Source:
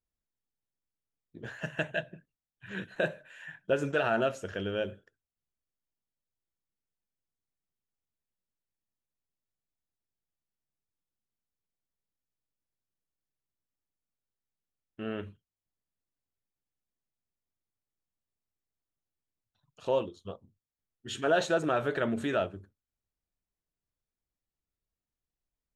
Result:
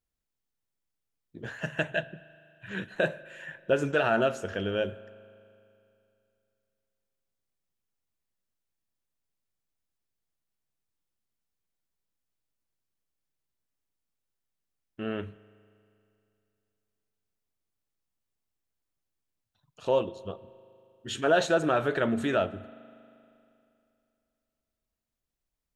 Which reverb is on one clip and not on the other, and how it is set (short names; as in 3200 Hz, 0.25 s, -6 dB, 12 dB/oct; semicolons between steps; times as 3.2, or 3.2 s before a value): spring tank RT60 2.7 s, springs 39 ms, chirp 30 ms, DRR 18.5 dB; gain +3 dB